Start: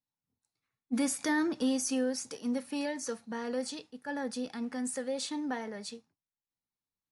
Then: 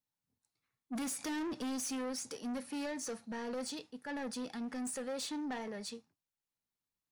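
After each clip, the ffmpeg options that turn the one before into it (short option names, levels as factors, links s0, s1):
-af "asoftclip=type=tanh:threshold=0.0168"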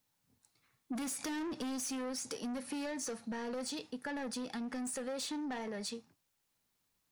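-af "acompressor=threshold=0.00316:ratio=10,volume=3.98"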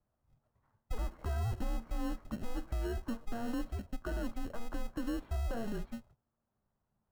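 -filter_complex "[0:a]lowpass=f=1400:w=0.5412,lowpass=f=1400:w=1.3066,asplit=2[s0][s1];[s1]acrusher=samples=35:mix=1:aa=0.000001,volume=0.376[s2];[s0][s2]amix=inputs=2:normalize=0,afreqshift=-230,volume=1.41"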